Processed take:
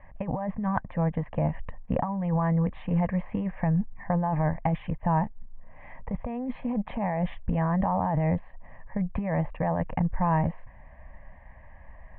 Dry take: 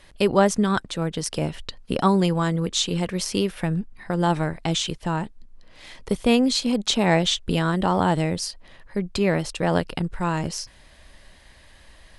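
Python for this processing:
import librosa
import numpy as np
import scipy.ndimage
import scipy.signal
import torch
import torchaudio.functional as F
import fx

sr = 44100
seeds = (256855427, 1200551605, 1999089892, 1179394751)

y = scipy.signal.sosfilt(scipy.signal.butter(6, 1800.0, 'lowpass', fs=sr, output='sos'), x)
y = fx.over_compress(y, sr, threshold_db=-24.0, ratio=-1.0)
y = fx.fixed_phaser(y, sr, hz=1400.0, stages=6)
y = y * 10.0 ** (2.0 / 20.0)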